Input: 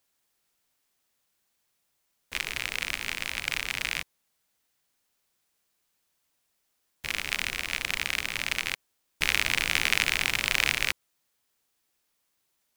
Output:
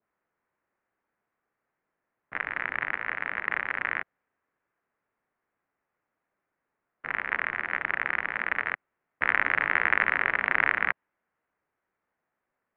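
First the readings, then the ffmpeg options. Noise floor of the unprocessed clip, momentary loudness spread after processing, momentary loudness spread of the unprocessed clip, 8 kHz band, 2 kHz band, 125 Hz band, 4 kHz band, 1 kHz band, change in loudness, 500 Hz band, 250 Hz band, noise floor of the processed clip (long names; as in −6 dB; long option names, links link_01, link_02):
−76 dBFS, 10 LU, 10 LU, below −40 dB, +3.0 dB, −6.5 dB, −18.0 dB, +8.0 dB, +0.5 dB, +4.0 dB, 0.0 dB, −84 dBFS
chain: -af "highpass=frequency=510:width_type=q:width=0.5412,highpass=frequency=510:width_type=q:width=1.307,lowpass=frequency=2300:width_type=q:width=0.5176,lowpass=frequency=2300:width_type=q:width=0.7071,lowpass=frequency=2300:width_type=q:width=1.932,afreqshift=-360,adynamicequalizer=threshold=0.0126:dfrequency=1500:dqfactor=0.7:tfrequency=1500:tqfactor=0.7:attack=5:release=100:ratio=0.375:range=2:mode=boostabove:tftype=highshelf,volume=3dB"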